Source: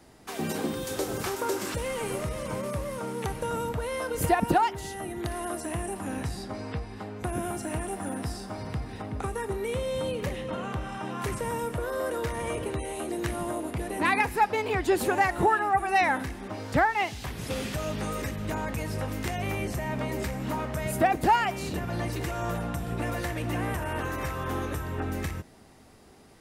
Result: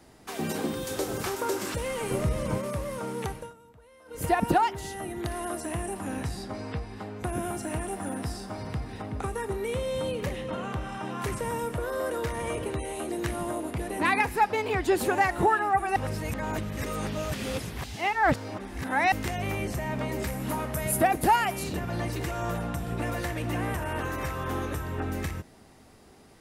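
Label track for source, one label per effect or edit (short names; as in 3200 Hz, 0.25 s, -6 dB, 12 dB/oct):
2.110000	2.580000	low shelf 390 Hz +7.5 dB
3.220000	4.370000	dip -23.5 dB, fades 0.32 s
15.960000	19.120000	reverse
20.270000	21.640000	bell 11000 Hz +12.5 dB 0.61 oct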